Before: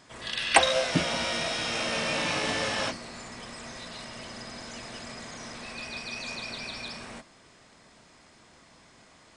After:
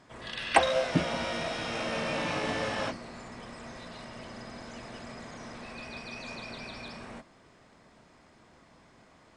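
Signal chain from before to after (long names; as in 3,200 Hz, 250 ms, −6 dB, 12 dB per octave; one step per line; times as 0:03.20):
high-shelf EQ 2,500 Hz −11 dB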